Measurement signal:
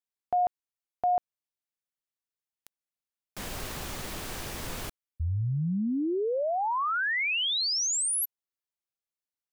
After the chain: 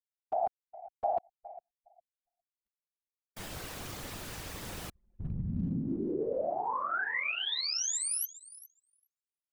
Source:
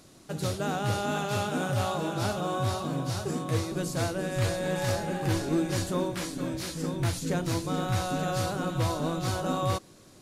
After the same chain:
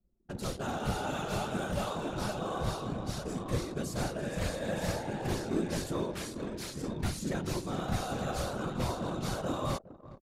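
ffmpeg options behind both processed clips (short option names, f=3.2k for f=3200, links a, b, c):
-af "afftfilt=real='hypot(re,im)*cos(2*PI*random(0))':imag='hypot(re,im)*sin(2*PI*random(1))':win_size=512:overlap=0.75,aecho=1:1:410|820|1230:0.158|0.0475|0.0143,anlmdn=0.0158,volume=1dB"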